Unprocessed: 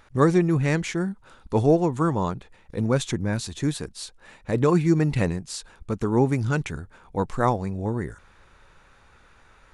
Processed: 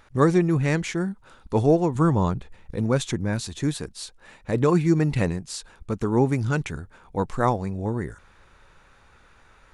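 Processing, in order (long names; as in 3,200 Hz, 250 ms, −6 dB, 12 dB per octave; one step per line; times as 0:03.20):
0:01.95–0:02.76: low-shelf EQ 170 Hz +9 dB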